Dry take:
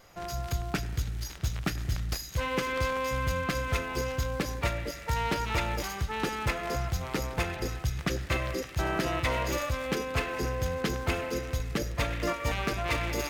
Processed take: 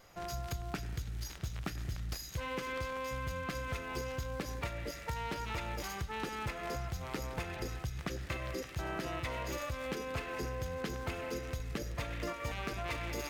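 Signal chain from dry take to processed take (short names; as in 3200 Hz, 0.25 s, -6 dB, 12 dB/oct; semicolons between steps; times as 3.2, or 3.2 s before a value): compressor, threshold -31 dBFS, peak gain reduction 8 dB; gain -3.5 dB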